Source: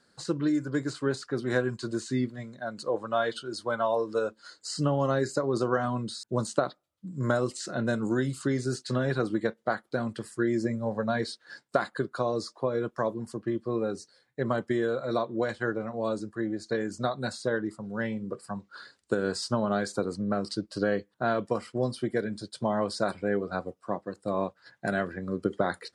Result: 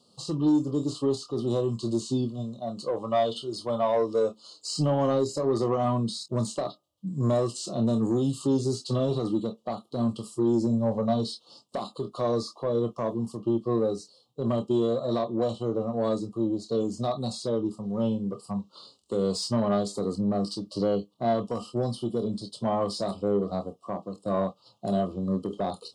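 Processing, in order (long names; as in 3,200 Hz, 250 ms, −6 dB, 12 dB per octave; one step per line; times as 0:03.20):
high-pass filter 53 Hz
parametric band 3,100 Hz +3.5 dB 0.57 octaves
in parallel at +1 dB: brickwall limiter −20.5 dBFS, peak gain reduction 10 dB
on the sum: Chebyshev band-stop filter 1,200–2,800 Hz, order 4
on a send at −8.5 dB: convolution reverb, pre-delay 24 ms
on the sum: soft clipping −15.5 dBFS, distortion −18 dB
harmonic and percussive parts rebalanced percussive −8 dB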